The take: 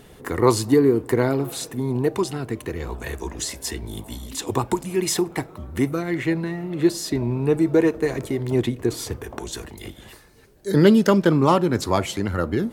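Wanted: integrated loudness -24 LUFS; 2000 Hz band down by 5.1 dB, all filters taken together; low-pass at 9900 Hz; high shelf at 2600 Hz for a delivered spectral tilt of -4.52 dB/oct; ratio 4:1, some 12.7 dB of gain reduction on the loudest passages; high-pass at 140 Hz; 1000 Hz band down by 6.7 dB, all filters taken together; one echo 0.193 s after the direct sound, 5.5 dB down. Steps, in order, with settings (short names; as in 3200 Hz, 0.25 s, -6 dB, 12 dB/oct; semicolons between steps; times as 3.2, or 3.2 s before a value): HPF 140 Hz; LPF 9900 Hz; bell 1000 Hz -7.5 dB; bell 2000 Hz -5.5 dB; high shelf 2600 Hz +4 dB; compressor 4:1, threshold -28 dBFS; echo 0.193 s -5.5 dB; gain +7 dB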